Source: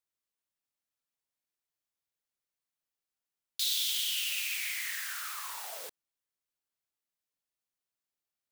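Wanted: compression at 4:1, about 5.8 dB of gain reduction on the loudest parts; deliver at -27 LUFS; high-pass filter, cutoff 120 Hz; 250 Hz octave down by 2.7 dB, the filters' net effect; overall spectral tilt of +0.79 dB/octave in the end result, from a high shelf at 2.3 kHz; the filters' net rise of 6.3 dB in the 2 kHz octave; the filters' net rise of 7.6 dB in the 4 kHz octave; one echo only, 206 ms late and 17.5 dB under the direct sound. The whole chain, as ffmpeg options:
-af "highpass=120,equalizer=f=250:t=o:g=-4,equalizer=f=2000:t=o:g=4,highshelf=f=2300:g=3.5,equalizer=f=4000:t=o:g=5,acompressor=threshold=0.0447:ratio=4,aecho=1:1:206:0.133,volume=1.33"

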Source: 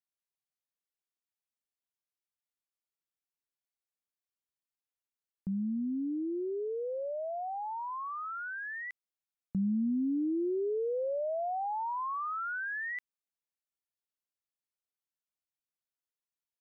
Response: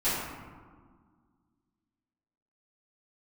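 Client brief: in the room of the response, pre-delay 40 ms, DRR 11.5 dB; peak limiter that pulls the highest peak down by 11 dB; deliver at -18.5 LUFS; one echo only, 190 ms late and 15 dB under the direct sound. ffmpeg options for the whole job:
-filter_complex "[0:a]alimiter=level_in=4.47:limit=0.0631:level=0:latency=1,volume=0.224,aecho=1:1:190:0.178,asplit=2[s0][s1];[1:a]atrim=start_sample=2205,adelay=40[s2];[s1][s2]afir=irnorm=-1:irlink=0,volume=0.0708[s3];[s0][s3]amix=inputs=2:normalize=0,volume=11.9"

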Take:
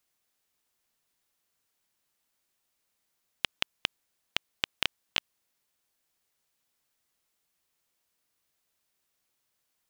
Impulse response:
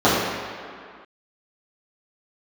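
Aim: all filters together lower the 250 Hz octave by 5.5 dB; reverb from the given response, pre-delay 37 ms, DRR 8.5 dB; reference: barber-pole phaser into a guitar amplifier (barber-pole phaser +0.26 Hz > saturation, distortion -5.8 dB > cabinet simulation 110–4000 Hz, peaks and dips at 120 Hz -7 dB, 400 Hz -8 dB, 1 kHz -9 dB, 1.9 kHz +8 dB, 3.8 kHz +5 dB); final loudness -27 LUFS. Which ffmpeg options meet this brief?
-filter_complex "[0:a]equalizer=f=250:t=o:g=-5,asplit=2[s0][s1];[1:a]atrim=start_sample=2205,adelay=37[s2];[s1][s2]afir=irnorm=-1:irlink=0,volume=0.02[s3];[s0][s3]amix=inputs=2:normalize=0,asplit=2[s4][s5];[s5]afreqshift=0.26[s6];[s4][s6]amix=inputs=2:normalize=1,asoftclip=threshold=0.0841,highpass=110,equalizer=f=120:t=q:w=4:g=-7,equalizer=f=400:t=q:w=4:g=-8,equalizer=f=1000:t=q:w=4:g=-9,equalizer=f=1900:t=q:w=4:g=8,equalizer=f=3800:t=q:w=4:g=5,lowpass=f=4000:w=0.5412,lowpass=f=4000:w=1.3066,volume=5.31"

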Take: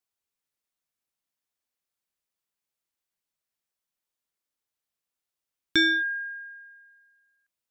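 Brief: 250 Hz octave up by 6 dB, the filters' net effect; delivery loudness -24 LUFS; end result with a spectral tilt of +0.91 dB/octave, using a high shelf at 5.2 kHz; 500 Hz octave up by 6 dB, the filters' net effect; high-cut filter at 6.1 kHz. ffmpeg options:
-af "lowpass=6100,equalizer=f=250:t=o:g=5,equalizer=f=500:t=o:g=7,highshelf=f=5200:g=3,volume=0.891"

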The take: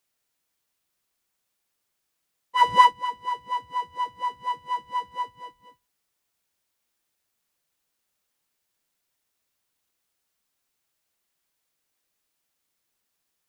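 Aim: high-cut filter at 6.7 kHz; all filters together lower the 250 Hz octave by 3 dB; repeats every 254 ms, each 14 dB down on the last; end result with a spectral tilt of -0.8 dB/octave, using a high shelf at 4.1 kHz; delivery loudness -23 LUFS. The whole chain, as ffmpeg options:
-af "lowpass=6700,equalizer=f=250:t=o:g=-4.5,highshelf=f=4100:g=7,aecho=1:1:254|508:0.2|0.0399,volume=1.19"

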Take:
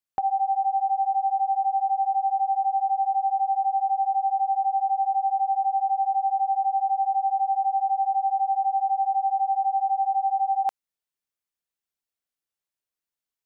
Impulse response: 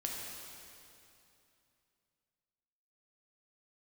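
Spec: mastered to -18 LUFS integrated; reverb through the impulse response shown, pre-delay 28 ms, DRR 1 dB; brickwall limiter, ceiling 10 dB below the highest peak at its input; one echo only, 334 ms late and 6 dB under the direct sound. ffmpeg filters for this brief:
-filter_complex "[0:a]alimiter=level_in=1.5:limit=0.0631:level=0:latency=1,volume=0.668,aecho=1:1:334:0.501,asplit=2[s0][s1];[1:a]atrim=start_sample=2205,adelay=28[s2];[s1][s2]afir=irnorm=-1:irlink=0,volume=0.708[s3];[s0][s3]amix=inputs=2:normalize=0,volume=2.66"

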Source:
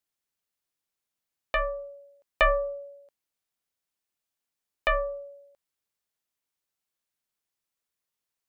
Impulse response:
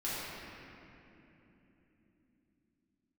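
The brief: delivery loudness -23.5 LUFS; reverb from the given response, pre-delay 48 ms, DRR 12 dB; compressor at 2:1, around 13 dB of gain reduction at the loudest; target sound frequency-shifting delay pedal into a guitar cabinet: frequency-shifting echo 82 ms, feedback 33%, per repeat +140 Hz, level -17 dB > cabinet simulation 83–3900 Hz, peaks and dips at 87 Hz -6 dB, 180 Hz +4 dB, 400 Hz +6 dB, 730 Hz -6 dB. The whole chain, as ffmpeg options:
-filter_complex "[0:a]acompressor=threshold=0.00794:ratio=2,asplit=2[s0][s1];[1:a]atrim=start_sample=2205,adelay=48[s2];[s1][s2]afir=irnorm=-1:irlink=0,volume=0.126[s3];[s0][s3]amix=inputs=2:normalize=0,asplit=4[s4][s5][s6][s7];[s5]adelay=82,afreqshift=140,volume=0.141[s8];[s6]adelay=164,afreqshift=280,volume=0.0468[s9];[s7]adelay=246,afreqshift=420,volume=0.0153[s10];[s4][s8][s9][s10]amix=inputs=4:normalize=0,highpass=83,equalizer=f=87:t=q:w=4:g=-6,equalizer=f=180:t=q:w=4:g=4,equalizer=f=400:t=q:w=4:g=6,equalizer=f=730:t=q:w=4:g=-6,lowpass=f=3900:w=0.5412,lowpass=f=3900:w=1.3066,volume=7.08"

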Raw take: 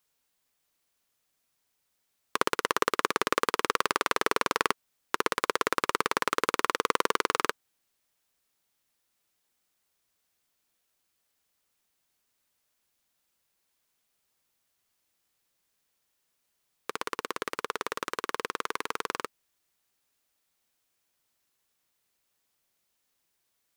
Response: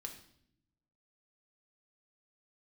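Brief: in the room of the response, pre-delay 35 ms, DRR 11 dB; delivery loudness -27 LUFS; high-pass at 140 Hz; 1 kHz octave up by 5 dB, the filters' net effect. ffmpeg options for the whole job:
-filter_complex "[0:a]highpass=140,equalizer=f=1000:t=o:g=6,asplit=2[s0][s1];[1:a]atrim=start_sample=2205,adelay=35[s2];[s1][s2]afir=irnorm=-1:irlink=0,volume=0.422[s3];[s0][s3]amix=inputs=2:normalize=0,volume=0.944"

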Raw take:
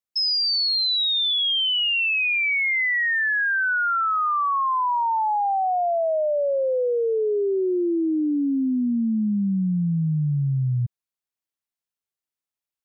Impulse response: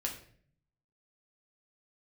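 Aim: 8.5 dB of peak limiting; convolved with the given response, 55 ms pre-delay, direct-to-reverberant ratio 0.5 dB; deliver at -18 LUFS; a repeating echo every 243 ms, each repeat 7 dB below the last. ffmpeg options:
-filter_complex "[0:a]alimiter=level_in=1.5:limit=0.0631:level=0:latency=1,volume=0.668,aecho=1:1:243|486|729|972|1215:0.447|0.201|0.0905|0.0407|0.0183,asplit=2[s0][s1];[1:a]atrim=start_sample=2205,adelay=55[s2];[s1][s2]afir=irnorm=-1:irlink=0,volume=0.75[s3];[s0][s3]amix=inputs=2:normalize=0,volume=2.51"

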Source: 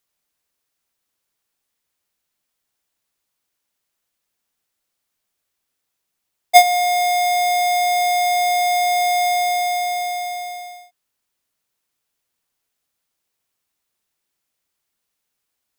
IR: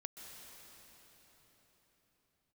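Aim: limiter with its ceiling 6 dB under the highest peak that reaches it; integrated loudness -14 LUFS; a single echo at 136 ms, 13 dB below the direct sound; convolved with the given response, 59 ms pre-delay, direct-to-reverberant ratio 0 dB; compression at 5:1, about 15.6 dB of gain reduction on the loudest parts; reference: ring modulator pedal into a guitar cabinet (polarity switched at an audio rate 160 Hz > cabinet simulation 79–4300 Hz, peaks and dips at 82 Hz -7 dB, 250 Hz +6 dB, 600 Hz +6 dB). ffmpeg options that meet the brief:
-filter_complex "[0:a]acompressor=threshold=0.0631:ratio=5,alimiter=level_in=1.12:limit=0.0631:level=0:latency=1,volume=0.891,aecho=1:1:136:0.224,asplit=2[s0][s1];[1:a]atrim=start_sample=2205,adelay=59[s2];[s1][s2]afir=irnorm=-1:irlink=0,volume=1.5[s3];[s0][s3]amix=inputs=2:normalize=0,aeval=exprs='val(0)*sgn(sin(2*PI*160*n/s))':c=same,highpass=79,equalizer=f=82:t=q:w=4:g=-7,equalizer=f=250:t=q:w=4:g=6,equalizer=f=600:t=q:w=4:g=6,lowpass=f=4300:w=0.5412,lowpass=f=4300:w=1.3066,volume=1.26"

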